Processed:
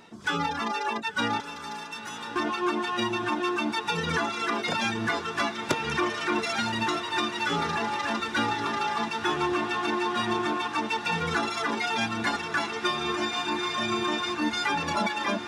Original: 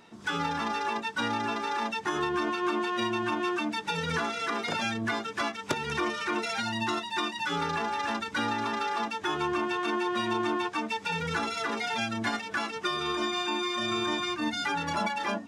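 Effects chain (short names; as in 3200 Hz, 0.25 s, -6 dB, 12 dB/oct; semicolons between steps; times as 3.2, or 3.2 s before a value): reverb removal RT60 0.89 s; 1.4–2.36 differentiator; on a send: diffused feedback echo 1.031 s, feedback 76%, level -11 dB; on the sum: gain +3.5 dB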